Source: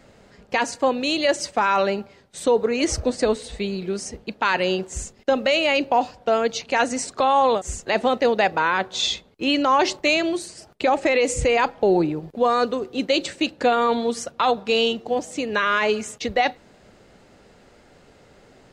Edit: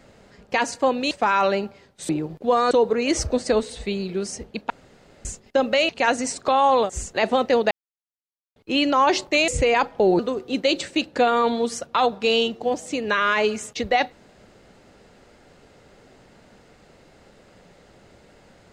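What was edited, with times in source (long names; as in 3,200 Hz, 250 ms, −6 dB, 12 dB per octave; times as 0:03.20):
0:01.11–0:01.46: remove
0:04.43–0:04.98: fill with room tone
0:05.62–0:06.61: remove
0:08.43–0:09.28: silence
0:10.20–0:11.31: remove
0:12.02–0:12.64: move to 0:02.44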